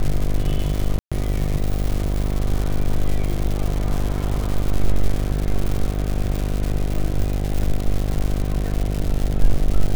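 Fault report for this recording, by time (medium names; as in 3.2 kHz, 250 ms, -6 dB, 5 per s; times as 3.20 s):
buzz 50 Hz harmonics 15 -23 dBFS
crackle 260 per s -23 dBFS
0.99–1.12 s: dropout 126 ms
7.63 s: dropout 2.5 ms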